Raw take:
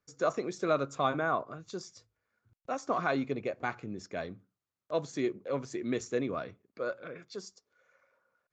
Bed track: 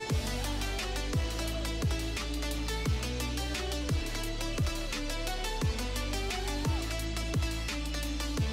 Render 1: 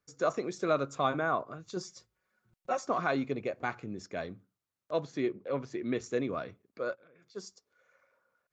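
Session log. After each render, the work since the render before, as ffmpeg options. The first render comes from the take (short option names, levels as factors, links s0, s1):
-filter_complex "[0:a]asettb=1/sr,asplit=3[s0][s1][s2];[s0]atrim=end=1.764[s3];[s1]atrim=start=1.76:end=2.87,asetpts=PTS-STARTPTS,afade=t=in:d=0.004:c=qsin,afade=t=out:st=1.106:d=0.004:c=qsin,aecho=1:1:5.4:0.89,atrim=end_sample=48951[s4];[s2]atrim=start=2.866[s5];[s3][s4]acrossfade=d=0.004:c1=hsin:c2=qsin[s6];[s6][s5]acrossfade=d=0.004:c1=qsin:c2=hsin,asettb=1/sr,asplit=3[s7][s8][s9];[s7]atrim=end=5.004[s10];[s8]atrim=start=5:end=6.04,asetpts=PTS-STARTPTS,afade=t=in:d=0.004:c=qsin,afade=t=out:st=1.036:d=0.004:c=qsin,lowpass=4100[s11];[s9]atrim=start=6.036[s12];[s10][s11]acrossfade=d=0.004:c1=hsin:c2=qsin[s13];[s13][s12]acrossfade=d=0.004:c1=qsin:c2=hsin,asplit=3[s14][s15][s16];[s14]afade=t=out:st=6.94:d=0.02[s17];[s15]acompressor=threshold=0.00141:ratio=16:attack=3.2:release=140:knee=1:detection=peak,afade=t=in:st=6.94:d=0.02,afade=t=out:st=7.35:d=0.02[s18];[s16]afade=t=in:st=7.35:d=0.02[s19];[s17][s18][s19]amix=inputs=3:normalize=0"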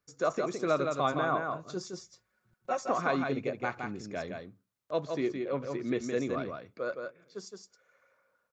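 -af "aecho=1:1:166:0.562"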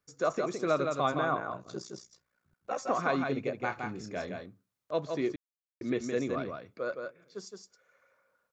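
-filter_complex "[0:a]asettb=1/sr,asplit=3[s0][s1][s2];[s0]atrim=end=1.344[s3];[s1]atrim=start=1.34:end=2.77,asetpts=PTS-STARTPTS,afade=t=in:d=0.004:c=qsin,afade=t=out:st=1.426:d=0.004:c=qsin,aeval=exprs='val(0)*sin(2*PI*30*n/s)':c=same[s4];[s2]atrim=start=2.766[s5];[s3][s4]acrossfade=d=0.004:c1=hsin:c2=qsin[s6];[s6][s5]acrossfade=d=0.004:c1=qsin:c2=hsin,asettb=1/sr,asplit=3[s7][s8][s9];[s7]atrim=end=3.654[s10];[s8]atrim=start=3.65:end=4.46,asetpts=PTS-STARTPTS,afade=t=in:d=0.004:c=qsin,afade=t=out:st=0.806:d=0.004:c=qsin,asplit=2[s11][s12];[s12]adelay=27,volume=0.398[s13];[s11][s13]amix=inputs=2:normalize=0,atrim=end_sample=35721[s14];[s9]atrim=start=4.456[s15];[s10][s14]acrossfade=d=0.004:c1=hsin:c2=qsin[s16];[s16][s15]acrossfade=d=0.004:c1=qsin:c2=hsin,asplit=3[s17][s18][s19];[s17]atrim=end=5.36,asetpts=PTS-STARTPTS,afade=t=out:st=5.356:d=0.004:c=hsin[s20];[s18]atrim=start=5.36:end=5.81,asetpts=PTS-STARTPTS,volume=0[s21];[s19]atrim=start=5.81,asetpts=PTS-STARTPTS,afade=t=in:d=0.004:c=hsin[s22];[s20][s21][s22]concat=n=3:v=0:a=1"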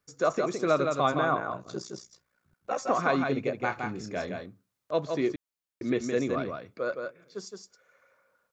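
-af "volume=1.5"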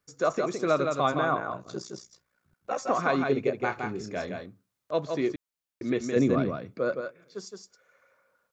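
-filter_complex "[0:a]asettb=1/sr,asplit=3[s0][s1][s2];[s0]atrim=end=3.174[s3];[s1]atrim=start=3.17:end=4.1,asetpts=PTS-STARTPTS,afade=t=in:d=0.004:c=qsin,afade=t=out:st=0.926:d=0.004:c=qsin,equalizer=f=400:w=6.5:g=9[s4];[s2]atrim=start=4.096[s5];[s3][s4]acrossfade=d=0.004:c1=hsin:c2=qsin[s6];[s6][s5]acrossfade=d=0.004:c1=qsin:c2=hsin,asettb=1/sr,asplit=3[s7][s8][s9];[s7]atrim=end=6.164[s10];[s8]atrim=start=6.16:end=7.01,asetpts=PTS-STARTPTS,afade=t=in:d=0.004:c=qsin,afade=t=out:st=0.846:d=0.004:c=qsin,equalizer=f=170:w=0.52:g=9.5[s11];[s9]atrim=start=7.006[s12];[s10][s11]acrossfade=d=0.004:c1=hsin:c2=qsin[s13];[s13][s12]acrossfade=d=0.004:c1=qsin:c2=hsin"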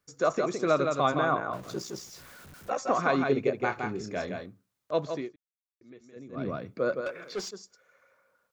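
-filter_complex "[0:a]asettb=1/sr,asplit=3[s0][s1][s2];[s0]atrim=end=1.534[s3];[s1]atrim=start=1.53:end=2.7,asetpts=PTS-STARTPTS,afade=t=in:d=0.004:c=qsin,afade=t=out:st=1.166:d=0.004:c=qsin,aeval=exprs='val(0)+0.5*0.00631*sgn(val(0))':c=same[s4];[s2]atrim=start=2.696[s5];[s3][s4]acrossfade=d=0.004:c1=hsin:c2=qsin[s6];[s6][s5]acrossfade=d=0.004:c1=qsin:c2=hsin,asettb=1/sr,asplit=3[s7][s8][s9];[s7]atrim=end=7.064[s10];[s8]atrim=start=7.06:end=7.51,asetpts=PTS-STARTPTS,afade=t=in:d=0.004:c=qsin,afade=t=out:st=0.446:d=0.004:c=qsin,asplit=2[s11][s12];[s12]highpass=f=720:p=1,volume=17.8,asoftclip=type=tanh:threshold=0.0596[s13];[s11][s13]amix=inputs=2:normalize=0,lowpass=f=2800:p=1,volume=0.501[s14];[s9]atrim=start=7.506[s15];[s10][s14]acrossfade=d=0.004:c1=hsin:c2=qsin[s16];[s16][s15]acrossfade=d=0.004:c1=qsin:c2=hsin,asplit=3[s17][s18][s19];[s17]atrim=end=5.31,asetpts=PTS-STARTPTS,afade=t=out:st=5.07:d=0.24:silence=0.0707946[s20];[s18]atrim=start=5.31:end=6.32,asetpts=PTS-STARTPTS,volume=0.0708[s21];[s19]atrim=start=6.32,asetpts=PTS-STARTPTS,afade=t=in:d=0.24:silence=0.0707946[s22];[s20][s21][s22]concat=n=3:v=0:a=1"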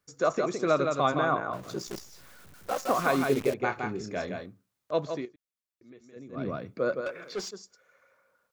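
-filter_complex "[0:a]asettb=1/sr,asplit=3[s0][s1][s2];[s0]atrim=end=1.874[s3];[s1]atrim=start=1.87:end=3.54,asetpts=PTS-STARTPTS,afade=t=in:d=0.004:c=qsin,afade=t=out:st=1.666:d=0.004:c=qsin,acrusher=bits=7:dc=4:mix=0:aa=0.000001[s4];[s2]atrim=start=3.536[s5];[s3][s4]acrossfade=d=0.004:c1=hsin:c2=qsin[s6];[s6][s5]acrossfade=d=0.004:c1=qsin:c2=hsin,asettb=1/sr,asplit=3[s7][s8][s9];[s7]atrim=end=5.254[s10];[s8]atrim=start=5.25:end=6.04,asetpts=PTS-STARTPTS,afade=t=in:d=0.004:c=qsin,afade=t=out:st=0.786:d=0.004:c=qsin,acompressor=threshold=0.00562:ratio=3:attack=3.2:release=140:knee=1:detection=peak[s11];[s9]atrim=start=6.036[s12];[s10][s11]acrossfade=d=0.004:c1=hsin:c2=qsin[s13];[s13][s12]acrossfade=d=0.004:c1=qsin:c2=hsin"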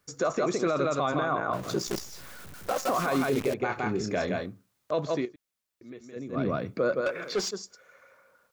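-filter_complex "[0:a]asplit=2[s0][s1];[s1]acompressor=threshold=0.0224:ratio=6,volume=1.33[s2];[s0][s2]amix=inputs=2:normalize=0,alimiter=limit=0.126:level=0:latency=1:release=13"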